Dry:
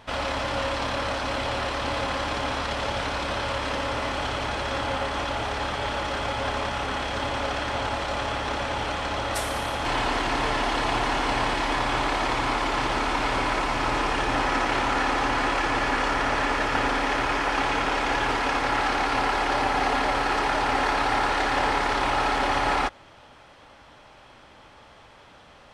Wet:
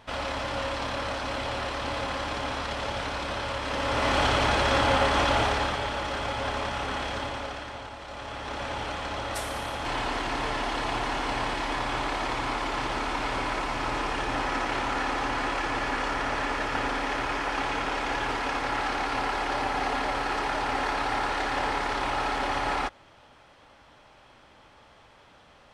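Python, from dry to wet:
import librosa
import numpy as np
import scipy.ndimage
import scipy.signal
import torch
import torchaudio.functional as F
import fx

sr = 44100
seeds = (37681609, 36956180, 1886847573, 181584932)

y = fx.gain(x, sr, db=fx.line((3.64, -3.5), (4.16, 5.0), (5.4, 5.0), (5.89, -2.5), (7.09, -2.5), (7.96, -13.5), (8.66, -4.5)))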